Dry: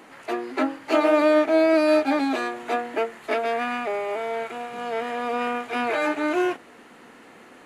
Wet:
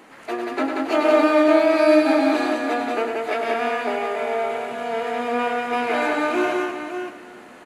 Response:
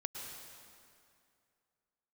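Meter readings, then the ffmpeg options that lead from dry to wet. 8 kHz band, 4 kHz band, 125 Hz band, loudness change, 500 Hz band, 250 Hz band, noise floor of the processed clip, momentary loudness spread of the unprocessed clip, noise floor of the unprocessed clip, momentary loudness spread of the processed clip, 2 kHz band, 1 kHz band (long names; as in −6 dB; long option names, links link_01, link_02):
+3.0 dB, +3.0 dB, can't be measured, +3.0 dB, +3.0 dB, +3.0 dB, −44 dBFS, 11 LU, −49 dBFS, 12 LU, +3.0 dB, +3.5 dB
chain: -filter_complex "[0:a]aecho=1:1:101|183|352|564:0.447|0.708|0.237|0.398,asplit=2[link_01][link_02];[1:a]atrim=start_sample=2205,adelay=117[link_03];[link_02][link_03]afir=irnorm=-1:irlink=0,volume=-11dB[link_04];[link_01][link_04]amix=inputs=2:normalize=0"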